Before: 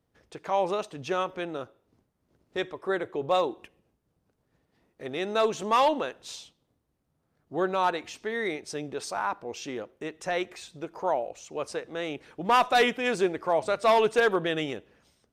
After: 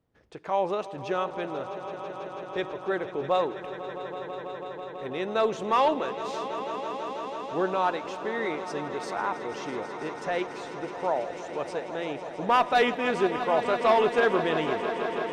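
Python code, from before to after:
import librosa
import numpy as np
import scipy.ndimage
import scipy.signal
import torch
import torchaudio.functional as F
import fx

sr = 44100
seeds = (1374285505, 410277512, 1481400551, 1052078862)

p1 = fx.lowpass(x, sr, hz=3000.0, slope=6)
y = p1 + fx.echo_swell(p1, sr, ms=164, loudest=5, wet_db=-14, dry=0)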